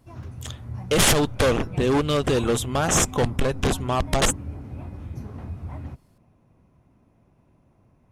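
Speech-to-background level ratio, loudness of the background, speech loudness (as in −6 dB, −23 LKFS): 14.5 dB, −36.5 LKFS, −22.0 LKFS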